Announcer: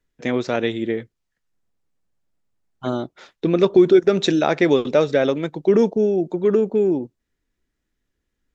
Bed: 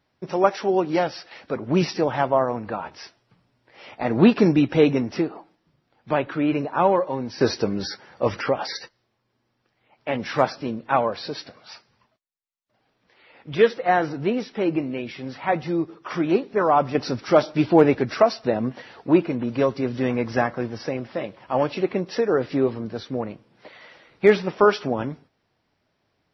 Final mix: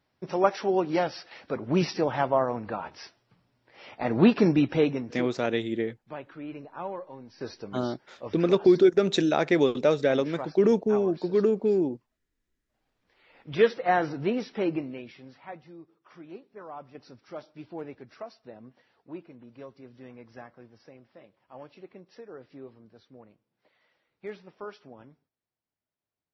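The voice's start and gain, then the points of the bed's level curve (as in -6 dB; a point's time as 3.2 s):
4.90 s, -5.5 dB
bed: 4.68 s -4 dB
5.43 s -17 dB
12.29 s -17 dB
13.57 s -4 dB
14.63 s -4 dB
15.74 s -23.5 dB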